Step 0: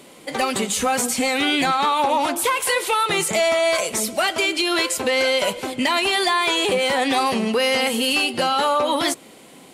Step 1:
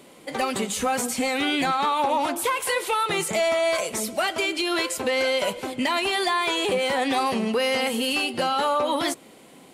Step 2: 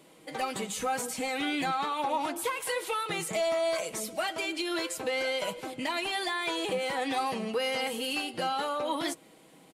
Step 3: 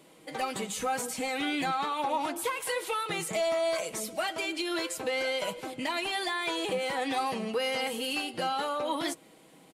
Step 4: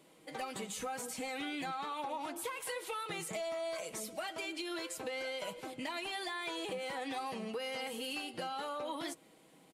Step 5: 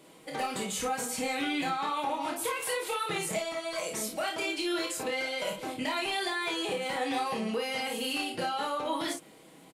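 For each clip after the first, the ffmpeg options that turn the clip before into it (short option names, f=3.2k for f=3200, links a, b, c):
-af "equalizer=f=6.5k:w=0.32:g=-3,volume=-3dB"
-af "aecho=1:1:6.3:0.45,volume=-8dB"
-af anull
-af "acompressor=threshold=-30dB:ratio=6,volume=-6dB"
-af "aecho=1:1:28|54:0.631|0.501,volume=6dB"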